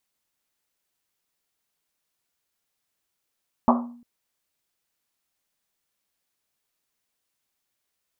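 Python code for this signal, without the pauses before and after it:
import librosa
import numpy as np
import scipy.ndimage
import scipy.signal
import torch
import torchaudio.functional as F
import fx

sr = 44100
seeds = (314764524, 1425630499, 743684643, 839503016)

y = fx.risset_drum(sr, seeds[0], length_s=0.35, hz=240.0, decay_s=0.6, noise_hz=890.0, noise_width_hz=540.0, noise_pct=40)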